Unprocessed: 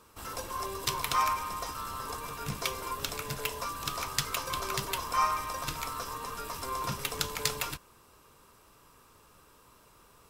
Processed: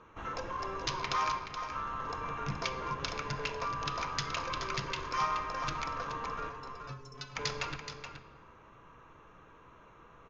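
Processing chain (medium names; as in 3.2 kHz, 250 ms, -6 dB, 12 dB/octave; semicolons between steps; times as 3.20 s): local Wiener filter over 9 samples; 1.32–1.72 s: gate -33 dBFS, range -11 dB; 4.51–5.18 s: peaking EQ 760 Hz -5 dB -> -14 dB 0.6 oct; 6.95–7.15 s: time-frequency box 490–5200 Hz -29 dB; in parallel at +1.5 dB: compression, threshold -41 dBFS, peak gain reduction 17 dB; 6.49–7.36 s: on the sum: inharmonic resonator 130 Hz, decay 0.28 s, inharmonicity 0.008; saturation -17.5 dBFS, distortion -18 dB; rippled Chebyshev low-pass 6.7 kHz, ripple 3 dB; delay 425 ms -9 dB; on a send at -9 dB: reverberation RT60 1.5 s, pre-delay 6 ms; on the sum: trim -1.5 dB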